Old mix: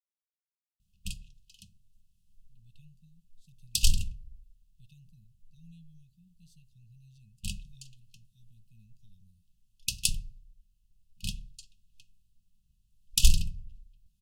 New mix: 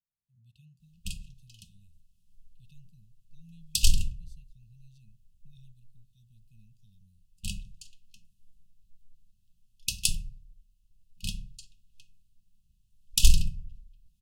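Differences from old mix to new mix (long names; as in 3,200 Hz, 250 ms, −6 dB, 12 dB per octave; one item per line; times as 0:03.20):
speech: entry −2.20 s
background: send +8.0 dB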